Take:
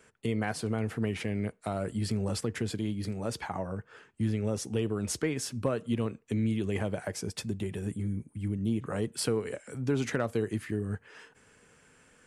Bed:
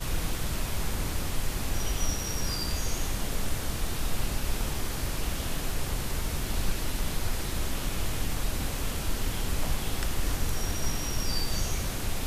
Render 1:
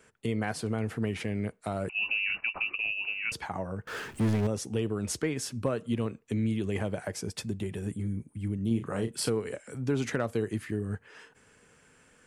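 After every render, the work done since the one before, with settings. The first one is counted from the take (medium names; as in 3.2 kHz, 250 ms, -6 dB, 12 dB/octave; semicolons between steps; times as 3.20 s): 1.89–3.32 s: frequency inversion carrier 2.8 kHz; 3.87–4.47 s: power-law waveshaper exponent 0.5; 8.67–9.30 s: doubling 35 ms -8 dB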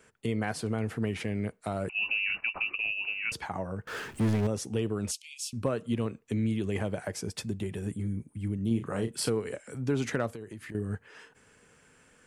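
5.11–5.53 s: steep high-pass 2.4 kHz 96 dB/octave; 10.28–10.75 s: compression 5:1, threshold -39 dBFS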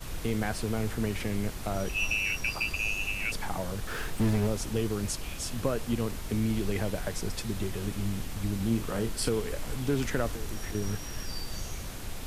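add bed -7.5 dB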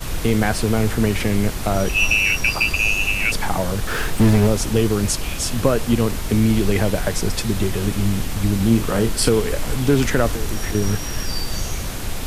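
trim +12 dB; peak limiter -3 dBFS, peak gain reduction 1.5 dB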